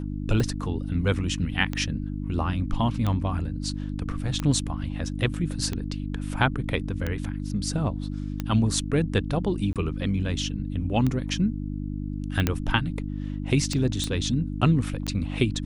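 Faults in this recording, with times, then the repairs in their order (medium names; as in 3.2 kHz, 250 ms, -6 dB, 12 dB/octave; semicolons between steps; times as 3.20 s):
hum 50 Hz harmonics 6 -31 dBFS
tick 45 rpm -15 dBFS
9.73–9.76 s: dropout 27 ms
12.47 s: pop -8 dBFS
14.04 s: pop -14 dBFS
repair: de-click; de-hum 50 Hz, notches 6; interpolate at 9.73 s, 27 ms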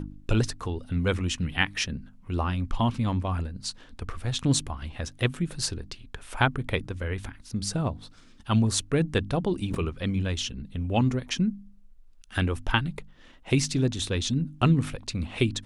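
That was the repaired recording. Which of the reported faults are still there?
12.47 s: pop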